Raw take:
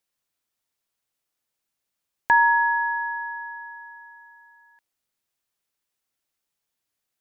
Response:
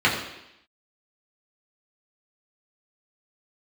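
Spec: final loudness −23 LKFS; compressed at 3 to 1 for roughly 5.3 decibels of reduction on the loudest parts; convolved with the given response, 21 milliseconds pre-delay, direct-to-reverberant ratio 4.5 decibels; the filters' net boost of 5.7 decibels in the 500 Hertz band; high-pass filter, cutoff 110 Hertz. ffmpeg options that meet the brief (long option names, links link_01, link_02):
-filter_complex "[0:a]highpass=110,equalizer=frequency=500:width_type=o:gain=7.5,acompressor=threshold=-19dB:ratio=3,asplit=2[link_01][link_02];[1:a]atrim=start_sample=2205,adelay=21[link_03];[link_02][link_03]afir=irnorm=-1:irlink=0,volume=-23.5dB[link_04];[link_01][link_04]amix=inputs=2:normalize=0,volume=2.5dB"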